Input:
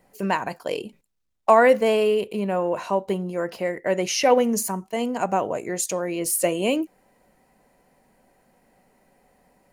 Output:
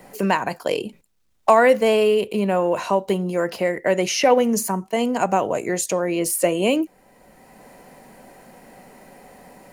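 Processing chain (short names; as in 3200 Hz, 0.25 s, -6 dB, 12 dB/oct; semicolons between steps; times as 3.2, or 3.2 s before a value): three-band squash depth 40%; gain +3.5 dB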